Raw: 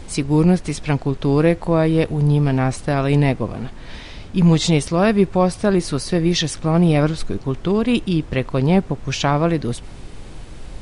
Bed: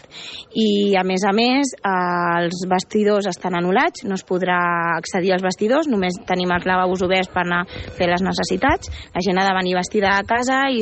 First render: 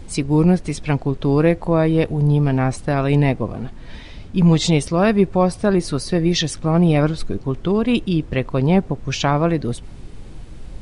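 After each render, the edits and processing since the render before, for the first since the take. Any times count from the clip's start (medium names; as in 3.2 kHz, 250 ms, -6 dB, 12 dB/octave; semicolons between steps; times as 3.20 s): noise reduction 6 dB, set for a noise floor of -36 dBFS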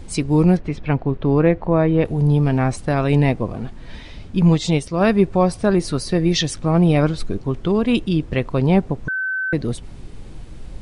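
0.57–2.05 s: low-pass 2.5 kHz; 4.39–5.01 s: upward expansion, over -21 dBFS; 9.08–9.53 s: bleep 1.53 kHz -20 dBFS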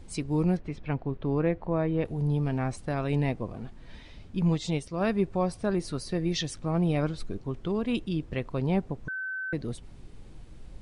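trim -11 dB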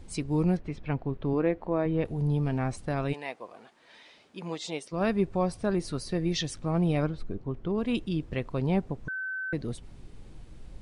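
1.33–1.86 s: resonant low shelf 190 Hz -6 dB, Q 1.5; 3.12–4.91 s: high-pass 750 Hz -> 350 Hz; 7.06–7.78 s: low-pass 1.5 kHz 6 dB/octave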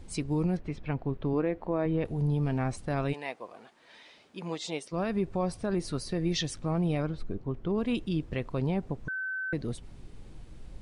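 peak limiter -20 dBFS, peak gain reduction 6 dB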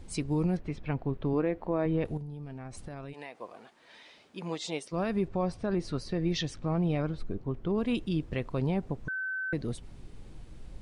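2.17–3.41 s: compression 10:1, threshold -37 dBFS; 5.28–7.06 s: distance through air 80 m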